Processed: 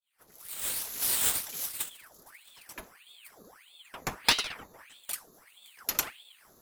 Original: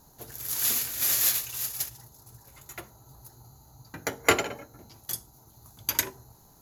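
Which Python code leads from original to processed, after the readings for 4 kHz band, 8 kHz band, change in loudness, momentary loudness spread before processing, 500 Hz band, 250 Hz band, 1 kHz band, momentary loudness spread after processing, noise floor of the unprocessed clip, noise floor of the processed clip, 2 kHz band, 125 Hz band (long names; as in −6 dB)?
+1.5 dB, −3.0 dB, −3.0 dB, 21 LU, −12.0 dB, −8.0 dB, −4.0 dB, 21 LU, −57 dBFS, −61 dBFS, −3.5 dB, −7.5 dB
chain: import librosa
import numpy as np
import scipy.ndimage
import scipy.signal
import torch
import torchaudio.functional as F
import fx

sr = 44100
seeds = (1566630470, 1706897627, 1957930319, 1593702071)

y = fx.fade_in_head(x, sr, length_s=1.12)
y = fx.ring_lfo(y, sr, carrier_hz=1900.0, swing_pct=85, hz=1.6)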